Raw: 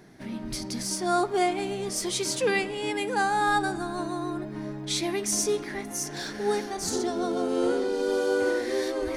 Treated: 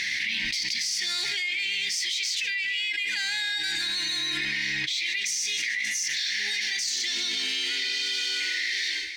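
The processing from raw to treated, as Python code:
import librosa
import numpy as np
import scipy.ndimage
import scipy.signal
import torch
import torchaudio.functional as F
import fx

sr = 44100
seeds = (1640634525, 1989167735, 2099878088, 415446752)

y = fx.fade_out_tail(x, sr, length_s=1.62)
y = scipy.signal.sosfilt(scipy.signal.ellip(4, 1.0, 40, 2000.0, 'highpass', fs=sr, output='sos'), y)
y = np.repeat(y[::2], 2)[:len(y)]
y = fx.air_absorb(y, sr, metres=140.0)
y = fx.echo_feedback(y, sr, ms=154, feedback_pct=48, wet_db=-18.5)
y = fx.env_flatten(y, sr, amount_pct=100)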